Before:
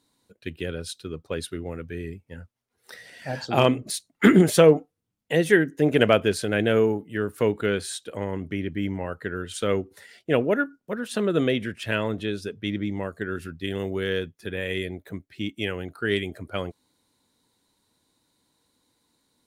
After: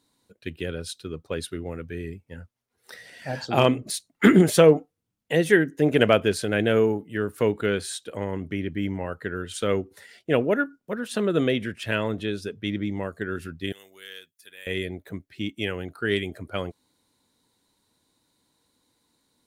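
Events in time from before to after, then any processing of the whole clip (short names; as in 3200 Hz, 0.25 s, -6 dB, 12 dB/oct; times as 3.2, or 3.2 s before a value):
13.72–14.67 differentiator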